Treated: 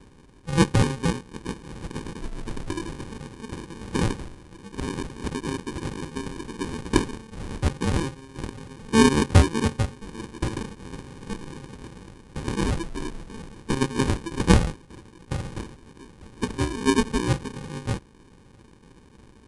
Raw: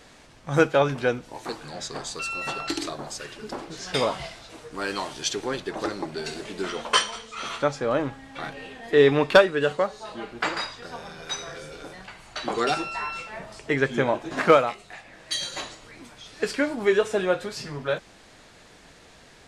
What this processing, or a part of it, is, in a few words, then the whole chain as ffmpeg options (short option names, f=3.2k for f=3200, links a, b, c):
crushed at another speed: -af "asetrate=88200,aresample=44100,acrusher=samples=33:mix=1:aa=0.000001,asetrate=22050,aresample=44100"